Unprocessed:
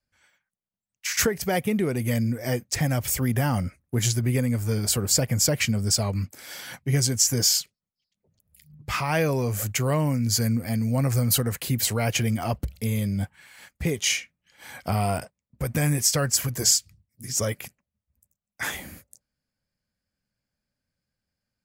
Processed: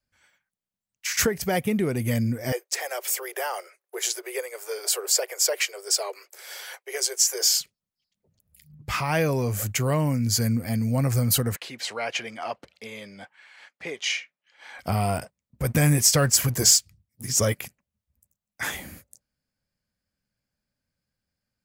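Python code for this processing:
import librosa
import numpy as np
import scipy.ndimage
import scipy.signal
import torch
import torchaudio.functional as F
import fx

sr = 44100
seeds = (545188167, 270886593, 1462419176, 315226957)

y = fx.steep_highpass(x, sr, hz=370.0, slope=96, at=(2.52, 7.56))
y = fx.bandpass_edges(y, sr, low_hz=560.0, high_hz=4300.0, at=(11.56, 14.79))
y = fx.leveller(y, sr, passes=1, at=(15.64, 17.64))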